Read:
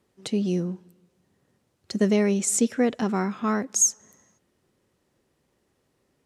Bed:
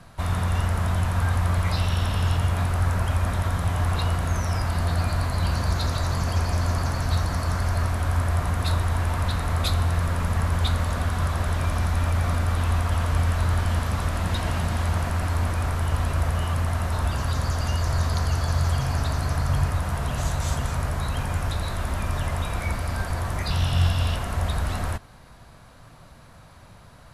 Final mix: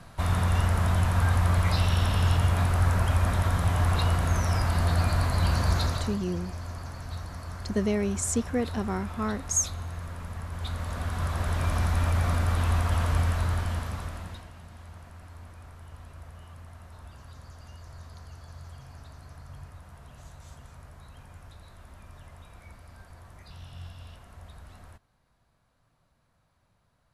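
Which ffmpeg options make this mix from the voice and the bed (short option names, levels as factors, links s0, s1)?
-filter_complex "[0:a]adelay=5750,volume=0.531[s0];[1:a]volume=3.55,afade=t=out:st=5.78:d=0.41:silence=0.223872,afade=t=in:st=10.5:d=1.26:silence=0.266073,afade=t=out:st=13.09:d=1.4:silence=0.1[s1];[s0][s1]amix=inputs=2:normalize=0"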